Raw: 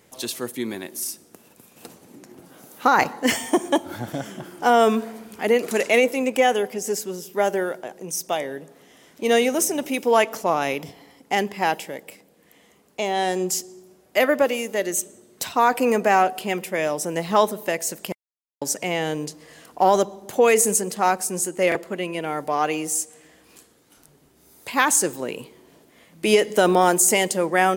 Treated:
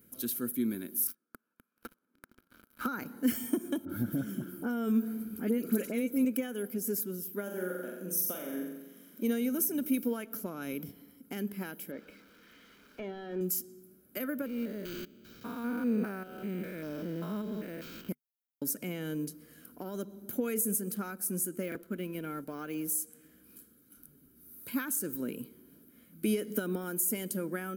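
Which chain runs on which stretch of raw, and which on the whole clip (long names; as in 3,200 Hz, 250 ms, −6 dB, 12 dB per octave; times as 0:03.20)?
0:01.07–0:02.86: resonant band-pass 1,200 Hz, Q 1.9 + leveller curve on the samples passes 5
0:03.85–0:06.25: low-shelf EQ 480 Hz +4.5 dB + all-pass dispersion highs, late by 45 ms, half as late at 2,200 Hz
0:07.43–0:09.25: linear-phase brick-wall high-pass 160 Hz + parametric band 530 Hz +6.5 dB 0.24 octaves + flutter between parallel walls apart 7.5 metres, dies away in 0.88 s
0:11.91–0:13.41: spike at every zero crossing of −25 dBFS + mid-hump overdrive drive 15 dB, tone 1,200 Hz, clips at −11 dBFS + high-frequency loss of the air 170 metres
0:14.46–0:18.09: spectrum averaged block by block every 200 ms + linearly interpolated sample-rate reduction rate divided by 4×
0:21.62–0:22.89: mu-law and A-law mismatch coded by A + linearly interpolated sample-rate reduction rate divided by 2×
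whole clip: comb filter 1.3 ms, depth 52%; downward compressor 6 to 1, threshold −21 dBFS; drawn EQ curve 150 Hz 0 dB, 240 Hz +10 dB, 420 Hz +4 dB, 800 Hz −21 dB, 1,300 Hz +1 dB, 1,900 Hz −8 dB, 7,800 Hz −7 dB, 12,000 Hz +12 dB; level −8.5 dB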